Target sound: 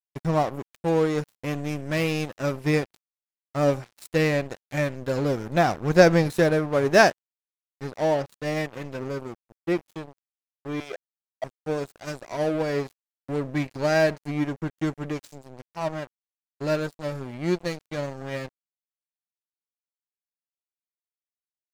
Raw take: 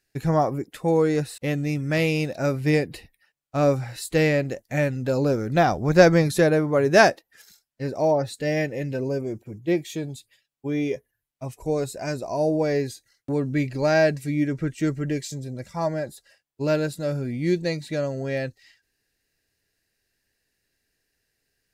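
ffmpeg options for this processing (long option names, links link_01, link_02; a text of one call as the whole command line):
ffmpeg -i in.wav -filter_complex "[0:a]asettb=1/sr,asplit=3[link_01][link_02][link_03];[link_01]atrim=end=10.804[link_04];[link_02]atrim=start=10.8:end=11.44,asetpts=PTS-STARTPTS,afade=type=in:duration=0.004:curve=qsin,afade=type=out:start_time=0.636:duration=0.004:curve=qsin,highpass=frequency=670:width_type=q:width=4.9[link_05];[link_03]atrim=start=11.436[link_06];[link_04][link_05]acrossfade=duration=0.004:curve1=hsin:curve2=qsin[link_07];[link_07][link_06]acrossfade=duration=0.004:curve1=qsin:curve2=hsin,asplit=2[link_08][link_09];[link_09]adelay=80,highpass=300,lowpass=3400,asoftclip=type=hard:threshold=-12.5dB,volume=-22dB[link_10];[link_08][link_10]amix=inputs=2:normalize=0,aeval=exprs='sgn(val(0))*max(abs(val(0))-0.0299,0)':channel_layout=same" out.wav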